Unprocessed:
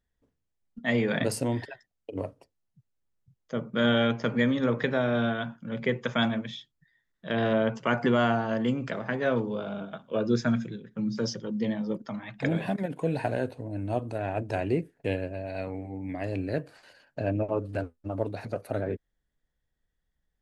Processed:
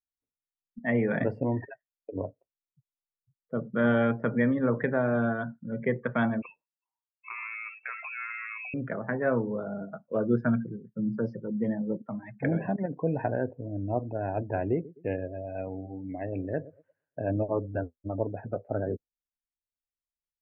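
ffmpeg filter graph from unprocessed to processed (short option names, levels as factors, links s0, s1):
-filter_complex "[0:a]asettb=1/sr,asplit=3[s0][s1][s2];[s0]atrim=end=6.424[s3];[s1]atrim=start=6.42:end=8.74,asetpts=PTS-STARTPTS,afade=t=in:d=0.004:c=qsin,afade=t=out:st=2.316:d=0.004:c=qsin,acompressor=threshold=0.0447:ratio=16:attack=3.2:release=140:knee=1:detection=peak,asoftclip=type=hard:threshold=0.0891,lowpass=f=2400:t=q:w=0.5098,lowpass=f=2400:t=q:w=0.6013,lowpass=f=2400:t=q:w=0.9,lowpass=f=2400:t=q:w=2.563,afreqshift=-2800[s4];[s2]atrim=start=8.736[s5];[s3][s4]acrossfade=d=0.004:c1=hsin:c2=qsin[s6];[s6][s5]acrossfade=d=0.004:c1=qsin:c2=hsin,asettb=1/sr,asplit=3[s7][s8][s9];[s7]atrim=end=14.734[s10];[s8]atrim=start=14.73:end=17.3,asetpts=PTS-STARTPTS,afade=t=in:d=0.004:c=qsin,afade=t=out:st=2.566:d=0.004:c=qsin,lowshelf=f=280:g=-4,aecho=1:1:116|232|348|464|580:0.141|0.0735|0.0382|0.0199|0.0103,atrim=end_sample=113337[s11];[s9]atrim=start=17.296[s12];[s10][s11]acrossfade=d=0.004:c1=hsin:c2=qsin[s13];[s13][s12]acrossfade=d=0.004:c1=qsin:c2=hsin,afftdn=nr=27:nf=-38,lowpass=f=2000:w=0.5412,lowpass=f=2000:w=1.3066"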